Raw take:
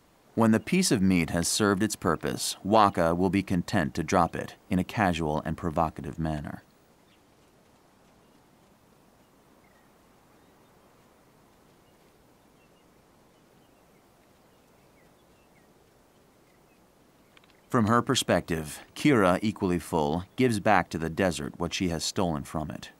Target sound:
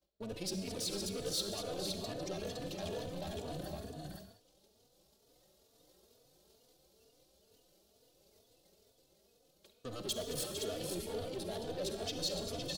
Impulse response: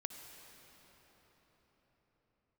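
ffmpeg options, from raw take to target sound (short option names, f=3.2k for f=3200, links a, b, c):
-filter_complex "[0:a]areverse,acompressor=threshold=-37dB:ratio=16,areverse,agate=range=-33dB:threshold=-47dB:ratio=3:detection=peak,equalizer=f=520:t=o:w=3:g=2.5,atempo=1.8,aecho=1:1:217|455|513:0.237|0.299|0.501,acrossover=split=690|4300[a][b][c];[c]dynaudnorm=f=430:g=17:m=8.5dB[d];[a][b][d]amix=inputs=3:normalize=0,asoftclip=type=tanh:threshold=-40dB,equalizer=f=125:t=o:w=1:g=-6,equalizer=f=250:t=o:w=1:g=-9,equalizer=f=500:t=o:w=1:g=5,equalizer=f=1k:t=o:w=1:g=-12,equalizer=f=2k:t=o:w=1:g=-11,equalizer=f=4k:t=o:w=1:g=8,equalizer=f=8k:t=o:w=1:g=-3[e];[1:a]atrim=start_sample=2205,afade=t=out:st=0.36:d=0.01,atrim=end_sample=16317,asetrate=66150,aresample=44100[f];[e][f]afir=irnorm=-1:irlink=0,asplit=2[g][h];[h]adelay=3.4,afreqshift=2.2[i];[g][i]amix=inputs=2:normalize=1,volume=18dB"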